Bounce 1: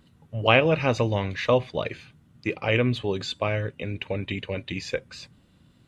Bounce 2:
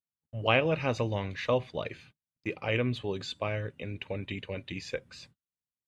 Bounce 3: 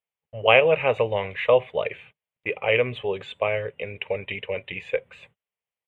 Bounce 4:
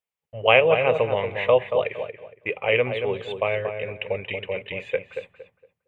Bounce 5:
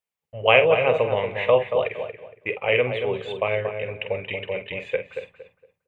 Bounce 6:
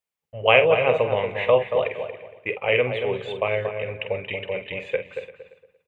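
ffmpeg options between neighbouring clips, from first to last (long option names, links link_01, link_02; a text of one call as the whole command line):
ffmpeg -i in.wav -af "agate=range=-43dB:threshold=-48dB:ratio=16:detection=peak,volume=-6.5dB" out.wav
ffmpeg -i in.wav -af "firequalizer=gain_entry='entry(190,0);entry(300,-6);entry(430,13);entry(930,10);entry(1500,5);entry(2100,13);entry(3200,9);entry(4900,-24);entry(7700,-4)':delay=0.05:min_phase=1,volume=-2dB" out.wav
ffmpeg -i in.wav -filter_complex "[0:a]asplit=2[link_01][link_02];[link_02]adelay=231,lowpass=frequency=1600:poles=1,volume=-6.5dB,asplit=2[link_03][link_04];[link_04]adelay=231,lowpass=frequency=1600:poles=1,volume=0.28,asplit=2[link_05][link_06];[link_06]adelay=231,lowpass=frequency=1600:poles=1,volume=0.28,asplit=2[link_07][link_08];[link_08]adelay=231,lowpass=frequency=1600:poles=1,volume=0.28[link_09];[link_01][link_03][link_05][link_07][link_09]amix=inputs=5:normalize=0" out.wav
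ffmpeg -i in.wav -filter_complex "[0:a]asplit=2[link_01][link_02];[link_02]adelay=47,volume=-10.5dB[link_03];[link_01][link_03]amix=inputs=2:normalize=0" out.wav
ffmpeg -i in.wav -af "aecho=1:1:343:0.106" out.wav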